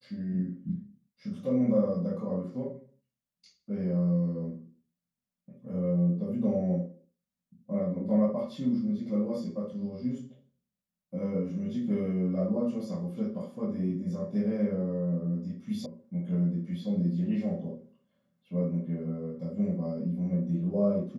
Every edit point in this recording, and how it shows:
15.86 s: sound stops dead

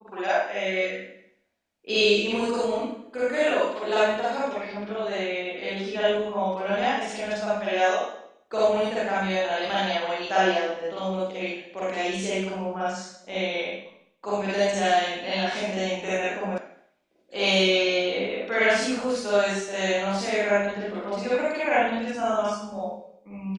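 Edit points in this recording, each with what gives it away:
16.58 s: sound stops dead

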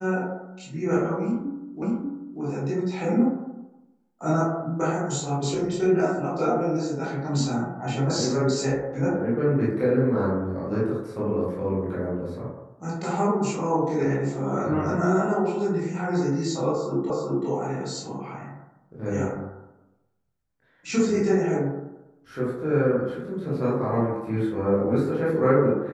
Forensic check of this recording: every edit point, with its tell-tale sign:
1.82 s: repeat of the last 0.59 s
17.10 s: repeat of the last 0.38 s

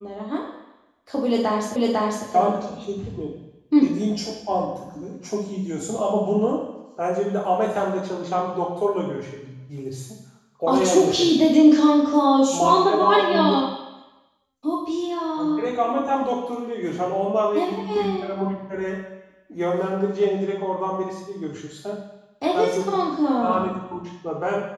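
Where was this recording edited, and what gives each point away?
1.76 s: repeat of the last 0.5 s

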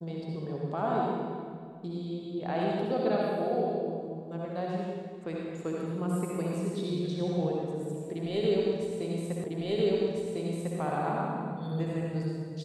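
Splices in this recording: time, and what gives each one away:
9.44 s: repeat of the last 1.35 s

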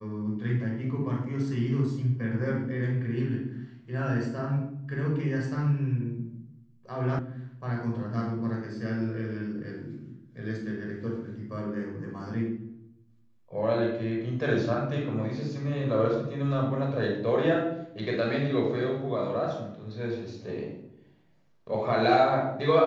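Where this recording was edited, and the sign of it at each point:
7.19 s: sound stops dead

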